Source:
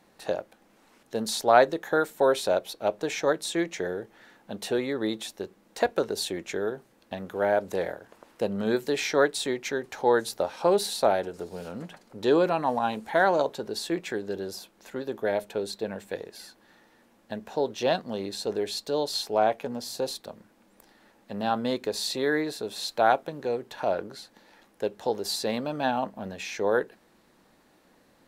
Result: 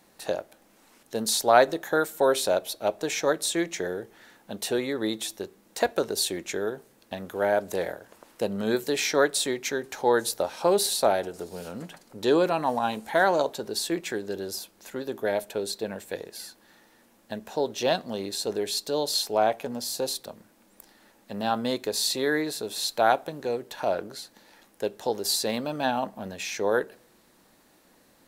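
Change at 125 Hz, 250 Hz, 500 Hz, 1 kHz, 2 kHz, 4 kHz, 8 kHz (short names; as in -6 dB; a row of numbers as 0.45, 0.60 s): -0.5, 0.0, 0.0, 0.0, +1.0, +3.5, +6.5 dB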